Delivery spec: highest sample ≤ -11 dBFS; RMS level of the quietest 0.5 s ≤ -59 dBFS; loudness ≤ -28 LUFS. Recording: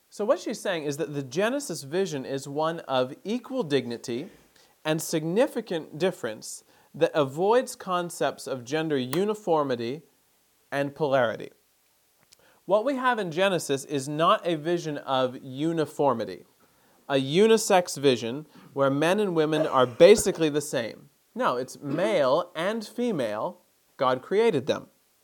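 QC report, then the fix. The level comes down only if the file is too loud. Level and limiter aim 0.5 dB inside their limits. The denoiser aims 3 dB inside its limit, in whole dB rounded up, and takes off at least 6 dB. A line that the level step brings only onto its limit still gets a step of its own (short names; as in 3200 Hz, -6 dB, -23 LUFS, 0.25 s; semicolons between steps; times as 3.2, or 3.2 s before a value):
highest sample -4.5 dBFS: fail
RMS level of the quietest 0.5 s -66 dBFS: OK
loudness -26.0 LUFS: fail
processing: gain -2.5 dB; limiter -11.5 dBFS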